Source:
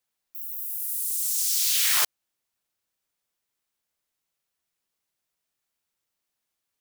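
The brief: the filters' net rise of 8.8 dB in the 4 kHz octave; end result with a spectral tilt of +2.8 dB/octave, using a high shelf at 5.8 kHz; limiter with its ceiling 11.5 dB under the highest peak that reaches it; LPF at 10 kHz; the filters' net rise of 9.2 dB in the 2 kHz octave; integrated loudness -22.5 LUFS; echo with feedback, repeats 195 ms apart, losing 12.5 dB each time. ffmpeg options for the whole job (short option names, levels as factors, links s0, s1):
-af "lowpass=10000,equalizer=f=2000:t=o:g=8.5,equalizer=f=4000:t=o:g=6.5,highshelf=f=5800:g=6,alimiter=limit=0.133:level=0:latency=1,aecho=1:1:195|390|585:0.237|0.0569|0.0137,volume=1.41"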